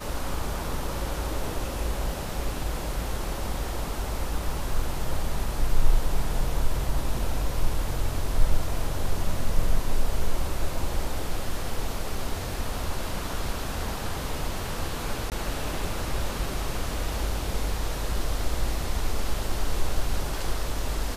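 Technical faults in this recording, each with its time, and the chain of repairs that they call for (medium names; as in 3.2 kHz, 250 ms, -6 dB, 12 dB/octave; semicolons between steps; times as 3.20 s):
15.30–15.32 s: dropout 18 ms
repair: interpolate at 15.30 s, 18 ms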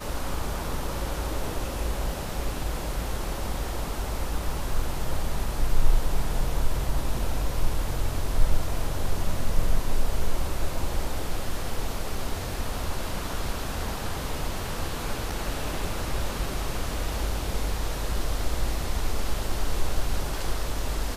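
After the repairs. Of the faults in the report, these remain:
nothing left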